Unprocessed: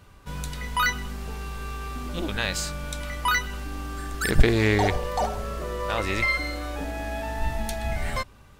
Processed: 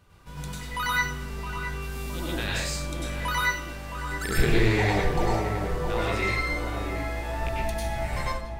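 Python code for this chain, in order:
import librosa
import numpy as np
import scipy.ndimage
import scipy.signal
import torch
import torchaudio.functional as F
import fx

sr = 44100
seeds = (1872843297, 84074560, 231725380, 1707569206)

y = fx.rattle_buzz(x, sr, strikes_db=-21.0, level_db=-15.0)
y = fx.high_shelf(y, sr, hz=6400.0, db=11.0, at=(1.82, 2.34))
y = fx.cheby2_highpass(y, sr, hz=240.0, order=4, stop_db=40, at=(3.4, 3.96))
y = fx.echo_filtered(y, sr, ms=667, feedback_pct=51, hz=1300.0, wet_db=-6)
y = fx.rev_plate(y, sr, seeds[0], rt60_s=0.56, hf_ratio=0.85, predelay_ms=85, drr_db=-5.0)
y = y * librosa.db_to_amplitude(-7.5)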